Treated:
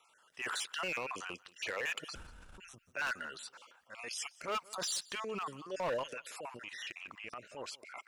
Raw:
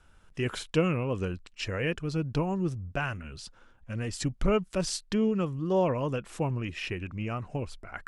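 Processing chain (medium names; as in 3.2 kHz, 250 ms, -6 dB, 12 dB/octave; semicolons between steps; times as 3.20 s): random holes in the spectrogram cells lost 36%; high-pass 810 Hz 12 dB/octave; 2.15–2.58 s: room tone; 5.97–7.52 s: compression, threshold -42 dBFS, peak gain reduction 8 dB; transient shaper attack -7 dB, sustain +8 dB; overload inside the chain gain 34 dB; feedback delay 179 ms, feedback 18%, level -22 dB; trim +3 dB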